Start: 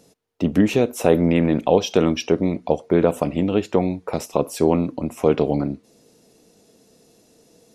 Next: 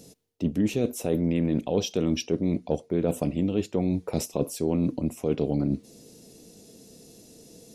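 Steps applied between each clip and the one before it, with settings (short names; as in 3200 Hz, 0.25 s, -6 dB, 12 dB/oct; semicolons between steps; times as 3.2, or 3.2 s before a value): bell 1200 Hz -12 dB 2.3 oct; reverse; compressor 5:1, threshold -30 dBFS, peak gain reduction 15.5 dB; reverse; gain +7.5 dB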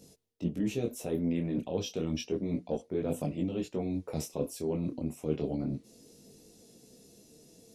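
detuned doubles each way 11 cents; gain -3 dB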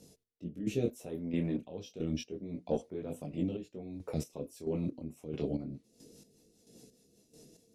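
chopper 1.5 Hz, depth 65%, duty 35%; rotary speaker horn 0.6 Hz, later 5 Hz, at 3.65; gain +1.5 dB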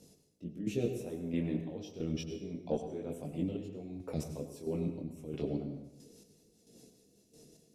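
reverb RT60 0.85 s, pre-delay 84 ms, DRR 7 dB; gain -1.5 dB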